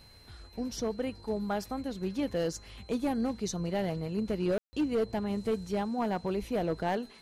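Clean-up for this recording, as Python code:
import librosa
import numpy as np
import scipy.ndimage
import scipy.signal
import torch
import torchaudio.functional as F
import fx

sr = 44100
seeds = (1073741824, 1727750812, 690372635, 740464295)

y = fx.fix_declip(x, sr, threshold_db=-23.5)
y = fx.notch(y, sr, hz=4100.0, q=30.0)
y = fx.fix_ambience(y, sr, seeds[0], print_start_s=0.02, print_end_s=0.52, start_s=4.58, end_s=4.73)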